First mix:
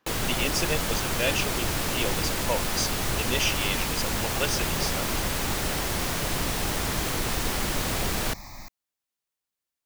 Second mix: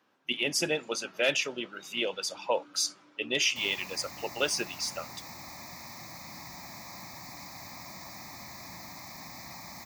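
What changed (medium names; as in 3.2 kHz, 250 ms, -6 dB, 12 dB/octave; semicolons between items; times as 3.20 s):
first sound: muted; second sound: entry +2.75 s; master: add high-pass 150 Hz 12 dB/octave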